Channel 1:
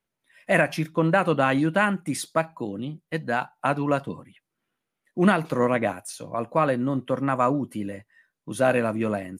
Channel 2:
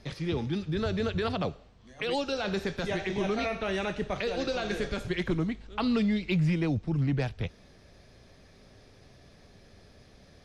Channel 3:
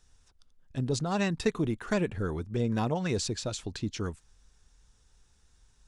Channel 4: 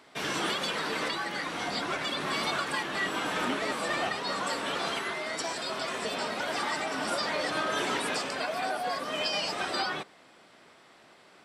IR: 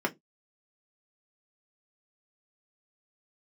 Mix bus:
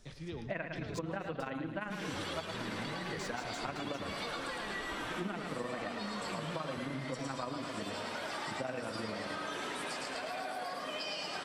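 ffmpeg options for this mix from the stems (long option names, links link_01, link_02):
-filter_complex "[0:a]tremolo=f=23:d=0.71,lowpass=frequency=4700:width=0.5412,lowpass=frequency=4700:width=1.3066,volume=-5.5dB,asplit=3[link_01][link_02][link_03];[link_02]volume=-7.5dB[link_04];[1:a]volume=-11.5dB,asplit=2[link_05][link_06];[link_06]volume=-11dB[link_07];[2:a]acompressor=threshold=-38dB:ratio=3,asoftclip=type=tanh:threshold=-39dB,volume=2dB[link_08];[3:a]adelay=1750,volume=-6.5dB,asplit=2[link_09][link_10];[link_10]volume=-3dB[link_11];[link_03]apad=whole_len=460791[link_12];[link_05][link_12]sidechaincompress=threshold=-31dB:ratio=8:attack=16:release=146[link_13];[link_04][link_07][link_11]amix=inputs=3:normalize=0,aecho=0:1:109|218|327|436|545|654:1|0.42|0.176|0.0741|0.0311|0.0131[link_14];[link_01][link_13][link_08][link_09][link_14]amix=inputs=5:normalize=0,acompressor=threshold=-36dB:ratio=5"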